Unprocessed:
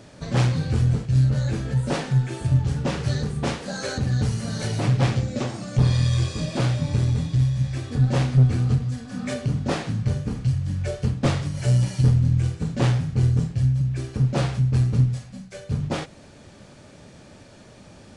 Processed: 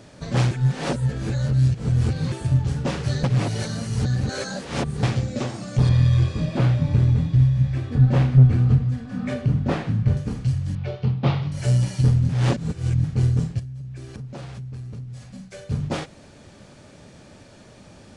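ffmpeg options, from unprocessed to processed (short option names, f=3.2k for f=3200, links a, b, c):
-filter_complex "[0:a]asettb=1/sr,asplit=3[a][b][c];[a]atrim=end=5.894[d];[b]atrim=start=5.89:end=10.17,asetpts=PTS-STARTPTS,afade=t=in:d=0.004:c=qsin,afade=t=out:st=4.276:d=0.004:c=qsin,bass=f=250:g=4,treble=f=4k:g=-12[e];[c]atrim=start=10.166[f];[d][e]acrossfade=d=0.004:c1=hsin:c2=qsin[g];[g][f]acrossfade=d=0.004:c1=qsin:c2=hsin,asettb=1/sr,asplit=3[h][i][j];[h]atrim=end=10.754[k];[i]atrim=start=10.75:end=11.52,asetpts=PTS-STARTPTS,afade=t=in:d=0.004:c=qsin,afade=t=out:st=0.766:d=0.004:c=qsin,highpass=110,equalizer=f=130:t=q:w=4:g=6,equalizer=f=280:t=q:w=4:g=-6,equalizer=f=560:t=q:w=4:g=-4,equalizer=f=840:t=q:w=4:g=4,equalizer=f=1.7k:t=q:w=4:g=-7,lowpass=f=4k:w=0.5412,lowpass=f=4k:w=1.3066[l];[j]atrim=start=11.516[m];[k][l]acrossfade=d=0.004:c1=hsin:c2=qsin[n];[n][m]acrossfade=d=0.004:c1=qsin:c2=hsin,asettb=1/sr,asplit=3[o][p][q];[o]atrim=end=13.594[r];[p]atrim=start=13.59:end=15.64,asetpts=PTS-STARTPTS,afade=t=in:d=0.004:c=qsin,afade=t=out:st=2.046:d=0.004:c=qsin,acompressor=threshold=-33dB:ratio=6:attack=3.2:release=140:knee=1:detection=peak[s];[q]atrim=start=15.636[t];[r][s]acrossfade=d=0.004:c1=hsin:c2=qsin[u];[u][t]acrossfade=d=0.004:c1=qsin:c2=hsin,asplit=7[v][w][x][y][z][aa][ab];[v]atrim=end=0.512[ac];[w]atrim=start=0.508:end=2.322,asetpts=PTS-STARTPTS,areverse[ad];[x]atrim=start=2.318:end=3.242[ae];[y]atrim=start=3.238:end=5.032,asetpts=PTS-STARTPTS,areverse[af];[z]atrim=start=5.028:end=12.292[ag];[aa]atrim=start=12.288:end=13.042,asetpts=PTS-STARTPTS,areverse[ah];[ab]atrim=start=13.038[ai];[ac][ad]acrossfade=d=0.004:c1=hsin:c2=hsin[aj];[aj][ae]acrossfade=d=0.004:c1=hsin:c2=hsin[ak];[ak][af]acrossfade=d=0.004:c1=hsin:c2=hsin[al];[al][ag]acrossfade=d=0.004:c1=hsin:c2=hsin[am];[am][ah]acrossfade=d=0.004:c1=hsin:c2=hsin[an];[an][ai]acrossfade=d=0.004:c1=hsin:c2=hsin"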